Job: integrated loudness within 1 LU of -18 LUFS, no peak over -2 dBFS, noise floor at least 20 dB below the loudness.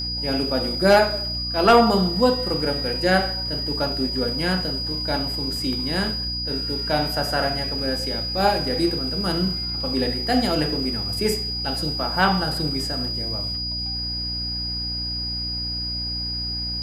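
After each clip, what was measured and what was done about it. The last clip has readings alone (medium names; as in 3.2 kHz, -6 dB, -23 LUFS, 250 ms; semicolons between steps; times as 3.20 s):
hum 60 Hz; highest harmonic 300 Hz; hum level -30 dBFS; steady tone 4.9 kHz; tone level -26 dBFS; loudness -22.0 LUFS; peak level -5.5 dBFS; loudness target -18.0 LUFS
-> de-hum 60 Hz, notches 5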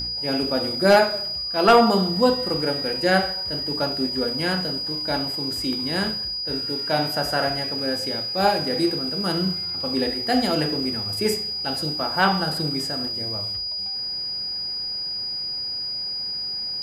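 hum not found; steady tone 4.9 kHz; tone level -26 dBFS
-> band-stop 4.9 kHz, Q 30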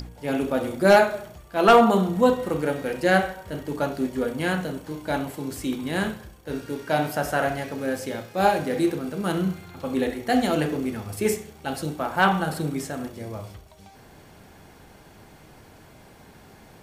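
steady tone not found; loudness -24.0 LUFS; peak level -6.5 dBFS; loudness target -18.0 LUFS
-> trim +6 dB; peak limiter -2 dBFS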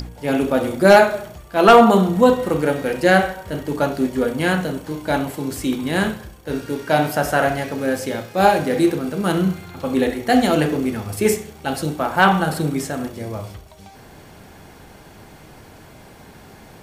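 loudness -18.5 LUFS; peak level -2.0 dBFS; noise floor -44 dBFS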